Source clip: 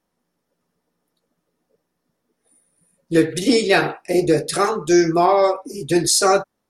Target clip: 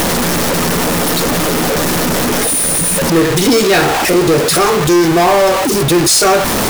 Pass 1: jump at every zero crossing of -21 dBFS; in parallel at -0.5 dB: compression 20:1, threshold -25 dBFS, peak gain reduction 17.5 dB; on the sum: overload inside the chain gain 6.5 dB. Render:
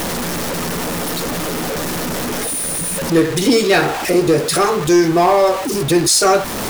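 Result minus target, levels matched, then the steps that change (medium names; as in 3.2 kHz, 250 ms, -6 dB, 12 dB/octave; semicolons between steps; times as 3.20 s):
jump at every zero crossing: distortion -7 dB
change: jump at every zero crossing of -10.5 dBFS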